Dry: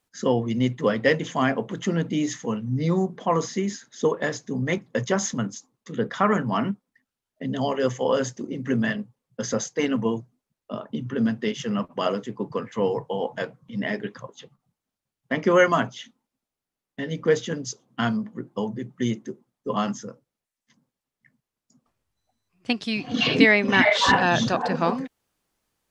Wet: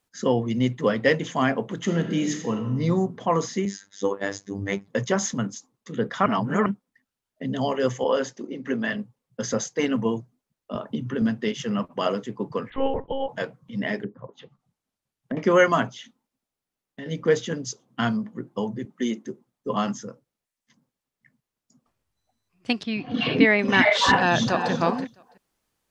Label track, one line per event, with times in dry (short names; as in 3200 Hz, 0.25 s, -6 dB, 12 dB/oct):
1.760000	2.760000	reverb throw, RT60 1.2 s, DRR 5.5 dB
3.650000	4.880000	robotiser 98.9 Hz
6.260000	6.660000	reverse
8.040000	8.930000	BPF 260–5600 Hz
10.750000	11.220000	three-band squash depth 70%
12.700000	13.290000	monotone LPC vocoder at 8 kHz 270 Hz
14.030000	15.370000	treble ducked by the level closes to 400 Hz, closed at -31 dBFS
15.900000	17.060000	compressor 2:1, threshold -38 dBFS
18.850000	19.250000	steep high-pass 190 Hz
22.830000	23.590000	air absorption 250 m
24.150000	24.710000	echo throw 0.33 s, feedback 10%, level -10.5 dB